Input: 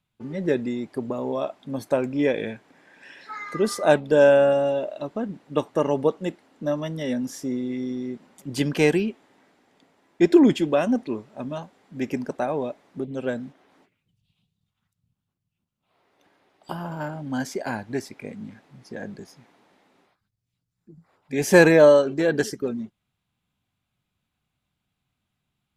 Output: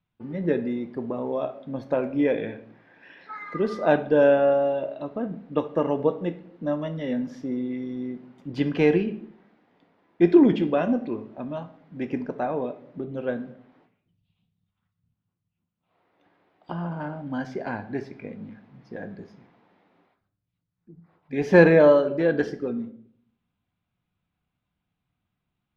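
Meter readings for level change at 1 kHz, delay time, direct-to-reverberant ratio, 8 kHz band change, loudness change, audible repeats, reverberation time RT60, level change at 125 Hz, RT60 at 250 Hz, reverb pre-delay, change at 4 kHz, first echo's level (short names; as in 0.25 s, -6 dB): -1.0 dB, none, 8.0 dB, under -20 dB, -1.5 dB, none, 0.60 s, 0.0 dB, 0.80 s, 4 ms, -7.5 dB, none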